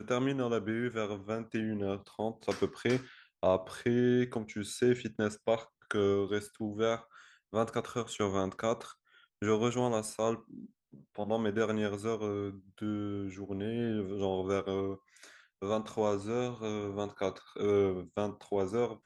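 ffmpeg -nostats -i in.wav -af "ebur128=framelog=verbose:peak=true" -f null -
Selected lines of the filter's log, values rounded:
Integrated loudness:
  I:         -33.6 LUFS
  Threshold: -44.0 LUFS
Loudness range:
  LRA:         3.7 LU
  Threshold: -54.0 LUFS
  LRA low:   -35.8 LUFS
  LRA high:  -32.0 LUFS
True peak:
  Peak:      -14.1 dBFS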